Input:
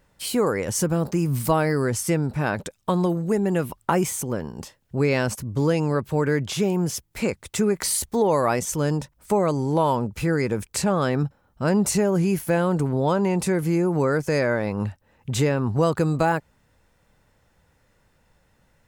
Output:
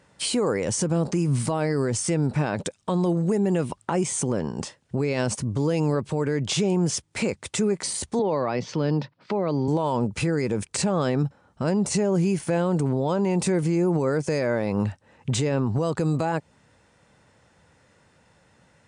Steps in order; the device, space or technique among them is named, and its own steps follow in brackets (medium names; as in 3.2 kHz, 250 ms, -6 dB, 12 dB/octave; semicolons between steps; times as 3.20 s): 8.19–9.68 s: Chebyshev band-pass 110–4700 Hz, order 4; dynamic bell 1.5 kHz, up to -5 dB, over -39 dBFS, Q 1.3; podcast mastering chain (high-pass 98 Hz 12 dB/octave; de-esser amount 45%; compression 2:1, threshold -26 dBFS, peak gain reduction 6 dB; peak limiter -21 dBFS, peak gain reduction 7.5 dB; trim +6 dB; MP3 96 kbps 22.05 kHz)